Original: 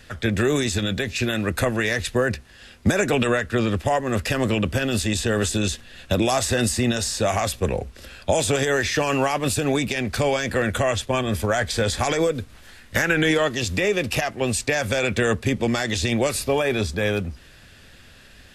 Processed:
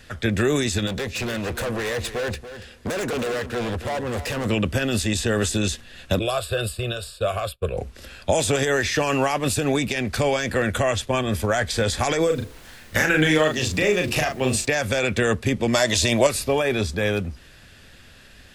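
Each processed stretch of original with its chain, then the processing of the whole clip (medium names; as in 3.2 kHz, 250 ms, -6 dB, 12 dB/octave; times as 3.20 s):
0.87–4.46 s: peaking EQ 480 Hz +9 dB 0.34 oct + overload inside the chain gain 24.5 dB + delay 284 ms -12 dB
6.19–7.77 s: expander -22 dBFS + static phaser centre 1.3 kHz, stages 8
12.29–14.65 s: de-hum 71.95 Hz, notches 9 + added noise pink -51 dBFS + doubling 39 ms -4.5 dB
15.73–16.27 s: treble shelf 3.4 kHz +9 dB + small resonant body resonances 630/980 Hz, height 13 dB
whole clip: none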